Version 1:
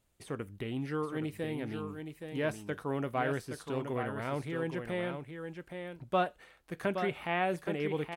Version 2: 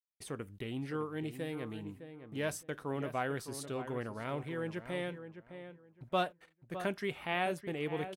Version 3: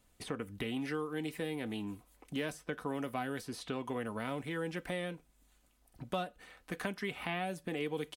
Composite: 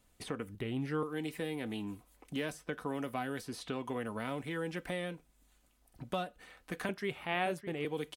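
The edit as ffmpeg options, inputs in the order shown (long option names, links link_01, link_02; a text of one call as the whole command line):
ffmpeg -i take0.wav -i take1.wav -i take2.wav -filter_complex "[2:a]asplit=3[link_01][link_02][link_03];[link_01]atrim=end=0.552[link_04];[0:a]atrim=start=0.548:end=1.032[link_05];[link_02]atrim=start=1.028:end=6.892[link_06];[1:a]atrim=start=6.888:end=7.852[link_07];[link_03]atrim=start=7.848[link_08];[link_04][link_05]acrossfade=duration=0.004:curve1=hsin:curve2=hsin[link_09];[link_09][link_06]acrossfade=duration=0.004:curve1=hsin:curve2=hsin[link_10];[link_10][link_07]acrossfade=duration=0.004:curve1=hsin:curve2=hsin[link_11];[link_11][link_08]acrossfade=duration=0.004:curve1=hsin:curve2=hsin" out.wav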